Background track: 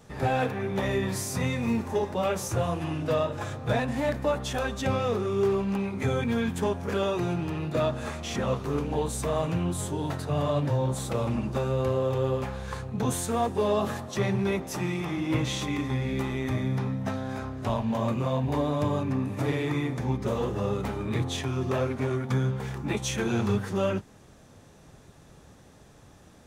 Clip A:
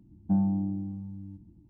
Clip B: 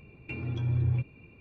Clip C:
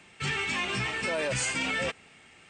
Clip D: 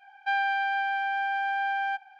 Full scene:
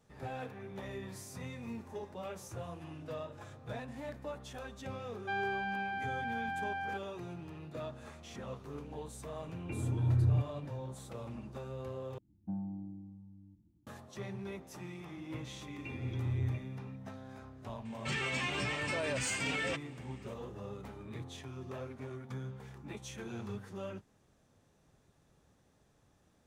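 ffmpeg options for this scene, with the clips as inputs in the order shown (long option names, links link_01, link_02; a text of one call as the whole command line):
ffmpeg -i bed.wav -i cue0.wav -i cue1.wav -i cue2.wav -i cue3.wav -filter_complex "[2:a]asplit=2[link_01][link_02];[0:a]volume=-16dB[link_03];[link_01]lowpass=1500[link_04];[1:a]highpass=46[link_05];[3:a]asoftclip=type=tanh:threshold=-20.5dB[link_06];[link_03]asplit=2[link_07][link_08];[link_07]atrim=end=12.184[link_09];[link_05]atrim=end=1.69,asetpts=PTS-STARTPTS,volume=-14dB[link_10];[link_08]atrim=start=13.866[link_11];[4:a]atrim=end=2.19,asetpts=PTS-STARTPTS,volume=-10dB,afade=type=in:duration=0.004:curve=hsin,afade=type=out:start_time=2.186:duration=0.004:curve=hsin,adelay=220941S[link_12];[link_04]atrim=end=1.4,asetpts=PTS-STARTPTS,volume=-1dB,afade=type=in:duration=0.004:curve=hsin,afade=type=out:start_time=1.396:duration=0.004:curve=hsin,adelay=9400[link_13];[link_02]atrim=end=1.4,asetpts=PTS-STARTPTS,volume=-7dB,afade=type=in:duration=0.004:curve=hsin,afade=type=out:start_time=1.396:duration=0.004:curve=hsin,adelay=686196S[link_14];[link_06]atrim=end=2.49,asetpts=PTS-STARTPTS,volume=-5dB,afade=type=in:duration=0.004:curve=hsin,afade=type=out:start_time=2.486:duration=0.004:curve=hsin,adelay=17850[link_15];[link_09][link_10]acrossfade=duration=0.004:curve1=hsin:curve2=hsin[link_16];[link_16][link_11]acrossfade=duration=0.004:curve1=hsin:curve2=hsin[link_17];[link_17][link_12][link_13][link_14][link_15]amix=inputs=5:normalize=0" out.wav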